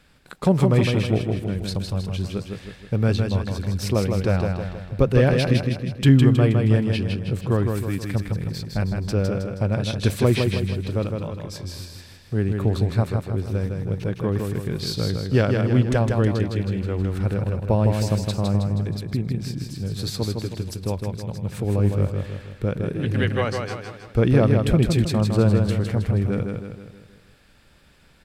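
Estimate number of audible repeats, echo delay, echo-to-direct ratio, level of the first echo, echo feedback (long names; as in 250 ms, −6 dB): 5, 159 ms, −3.5 dB, −4.5 dB, 49%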